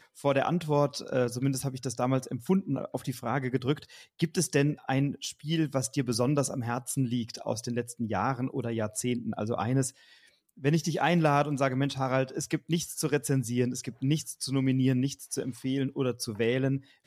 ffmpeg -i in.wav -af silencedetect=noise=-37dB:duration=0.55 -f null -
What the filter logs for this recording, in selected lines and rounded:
silence_start: 9.89
silence_end: 10.64 | silence_duration: 0.75